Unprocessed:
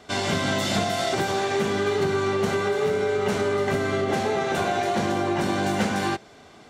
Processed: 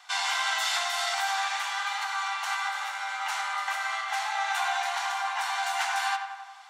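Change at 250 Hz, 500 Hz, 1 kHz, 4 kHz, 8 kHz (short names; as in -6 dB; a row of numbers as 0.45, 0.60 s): under -40 dB, -21.0 dB, -1.0 dB, +0.5 dB, 0.0 dB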